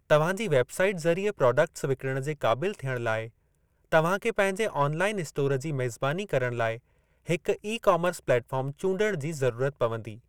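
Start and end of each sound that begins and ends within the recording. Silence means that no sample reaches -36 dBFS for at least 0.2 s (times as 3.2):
3.92–6.76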